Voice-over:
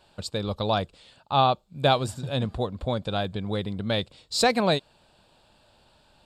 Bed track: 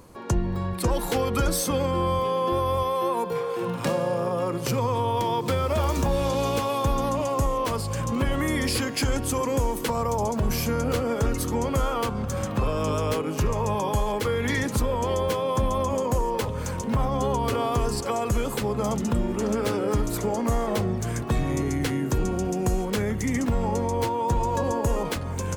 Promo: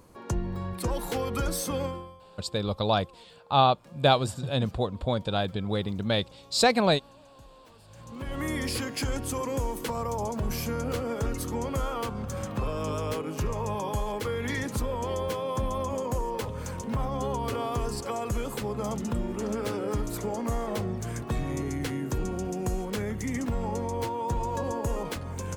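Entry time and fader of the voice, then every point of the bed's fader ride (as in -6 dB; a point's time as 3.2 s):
2.20 s, 0.0 dB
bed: 1.86 s -5.5 dB
2.18 s -28.5 dB
7.75 s -28.5 dB
8.44 s -5.5 dB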